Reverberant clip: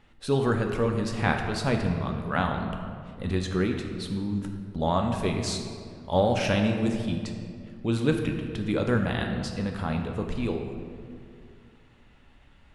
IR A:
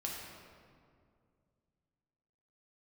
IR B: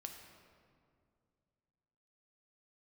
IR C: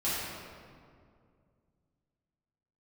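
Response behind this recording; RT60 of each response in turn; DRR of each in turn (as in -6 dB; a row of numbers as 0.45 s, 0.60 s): B; 2.2 s, 2.3 s, 2.2 s; -3.0 dB, 3.0 dB, -12.0 dB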